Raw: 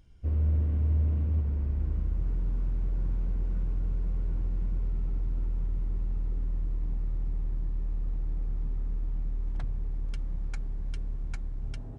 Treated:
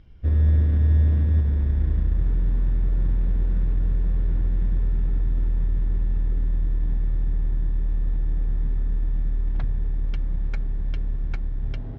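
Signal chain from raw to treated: treble shelf 2.1 kHz +8.5 dB; in parallel at -8.5 dB: sample-and-hold 25×; on the sum: distance through air 290 m; trim +5 dB

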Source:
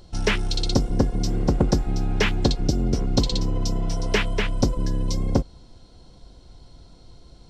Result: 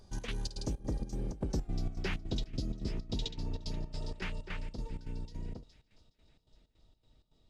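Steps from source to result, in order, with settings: Doppler pass-by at 1.62 s, 40 m/s, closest 7.4 m; feedback echo behind a high-pass 416 ms, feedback 54%, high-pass 2.1 kHz, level -19 dB; trance gate "xx.xx.xx." 160 bpm -12 dB; dynamic bell 1.3 kHz, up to -5 dB, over -51 dBFS, Q 0.71; reverse; compression 8:1, threshold -42 dBFS, peak gain reduction 25 dB; reverse; trim +10 dB

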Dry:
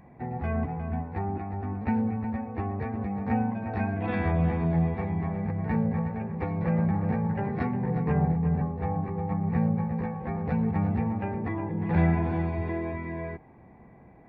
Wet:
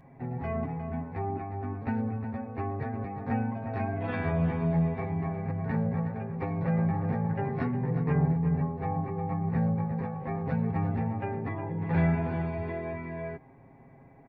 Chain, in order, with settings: comb 7.4 ms, depth 67%; trim -3 dB

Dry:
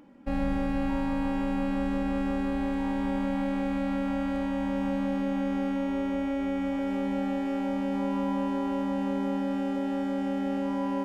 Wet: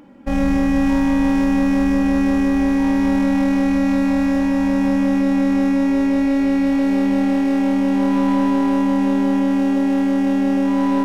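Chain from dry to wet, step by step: tracing distortion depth 0.15 ms; spring tank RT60 1 s, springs 40 ms, chirp 25 ms, DRR 9.5 dB; trim +8.5 dB

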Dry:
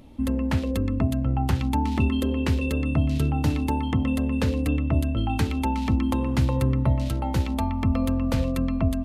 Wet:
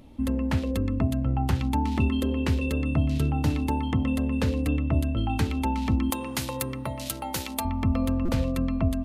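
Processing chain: 6.10–7.65 s: RIAA curve recording; buffer glitch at 8.25 s, samples 256, times 5; trim -1.5 dB

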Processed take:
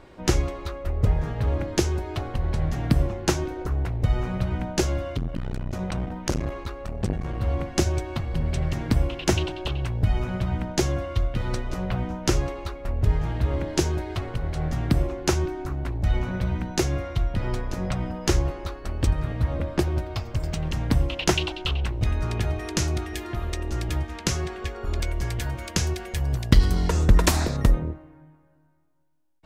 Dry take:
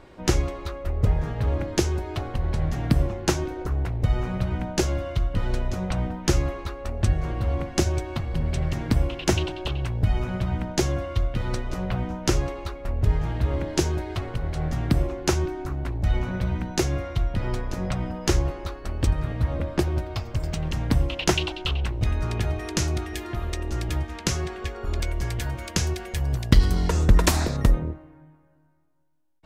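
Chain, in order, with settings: 5.09–7.42 s: transformer saturation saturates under 480 Hz

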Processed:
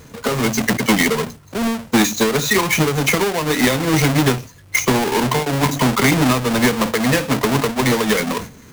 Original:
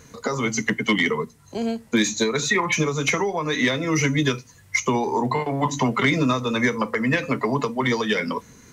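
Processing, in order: square wave that keeps the level; decay stretcher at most 150 dB/s; trim +1 dB

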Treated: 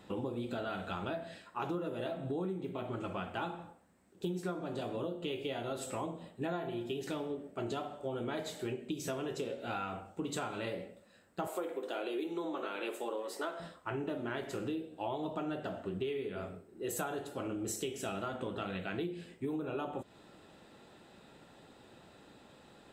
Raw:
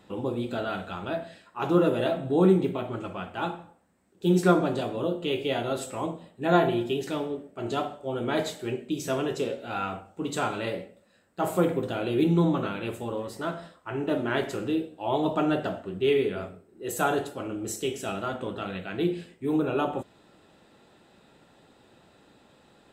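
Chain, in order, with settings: 11.47–13.60 s: high-pass 330 Hz 24 dB/octave; compression 12:1, threshold -34 dBFS, peak gain reduction 20 dB

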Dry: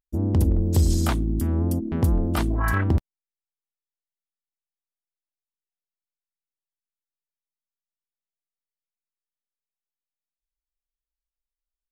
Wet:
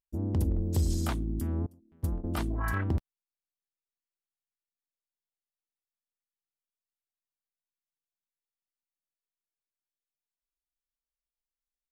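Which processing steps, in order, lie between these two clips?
1.66–2.24 s: gate -18 dBFS, range -27 dB; trim -8 dB

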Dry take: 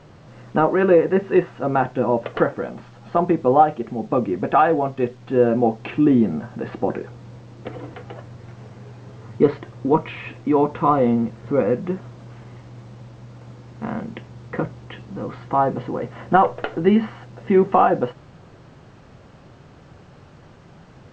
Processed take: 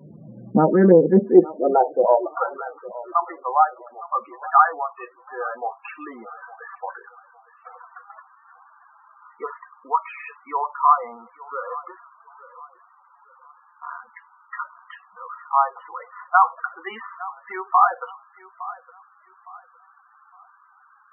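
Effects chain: high-pass sweep 190 Hz -> 1.2 kHz, 1.06–2.66 s; dynamic bell 830 Hz, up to +3 dB, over -51 dBFS, Q 0.76; on a send: thinning echo 861 ms, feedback 34%, high-pass 270 Hz, level -17 dB; on the sum: loudest bins only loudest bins 16; bass shelf 130 Hz +11.5 dB; loudspeaker Doppler distortion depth 0.11 ms; trim -3 dB

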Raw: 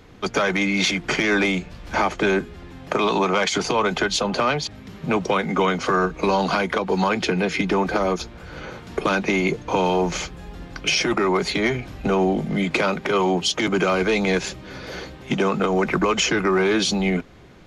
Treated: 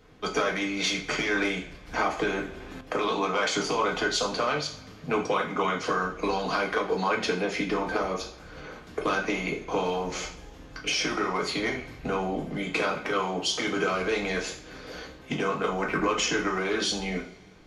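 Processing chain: harmonic-percussive split harmonic -6 dB; two-slope reverb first 0.41 s, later 1.8 s, from -21 dB, DRR -1 dB; 2.17–2.81 s: three bands compressed up and down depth 70%; trim -7.5 dB

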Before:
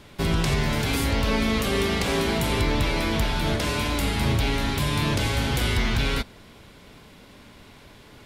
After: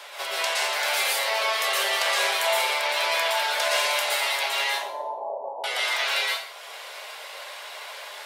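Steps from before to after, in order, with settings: reverb removal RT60 0.67 s; 4.64–5.64 s: steep low-pass 980 Hz 96 dB/octave; in parallel at 0 dB: compressor with a negative ratio -35 dBFS, ratio -1; on the sum: steep high-pass 570 Hz 36 dB/octave; plate-style reverb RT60 0.59 s, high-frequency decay 1×, pre-delay 105 ms, DRR -4 dB; trim -1.5 dB

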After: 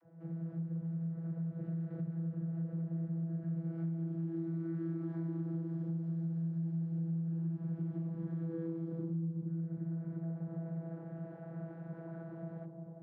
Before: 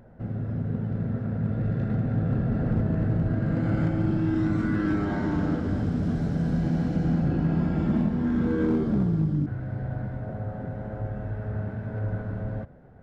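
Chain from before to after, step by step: bucket-brigade echo 352 ms, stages 2048, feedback 59%, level -6 dB; vocoder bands 32, saw 165 Hz; compression 6:1, threshold -36 dBFS, peak gain reduction 18.5 dB

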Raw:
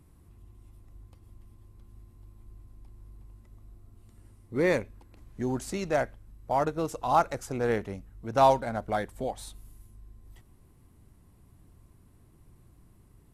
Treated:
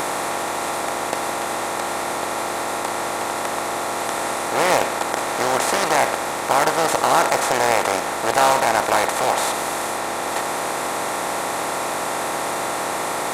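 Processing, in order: spectral levelling over time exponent 0.2; tilt EQ +3.5 dB/octave; loudspeaker Doppler distortion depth 0.27 ms; trim +1.5 dB

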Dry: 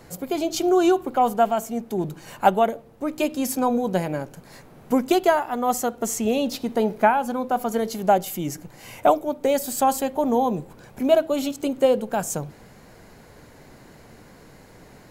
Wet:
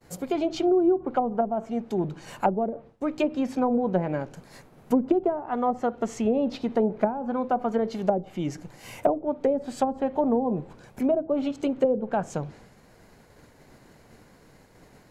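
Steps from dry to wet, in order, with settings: low-pass that closes with the level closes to 440 Hz, closed at -15.5 dBFS; expander -42 dBFS; trim -1 dB

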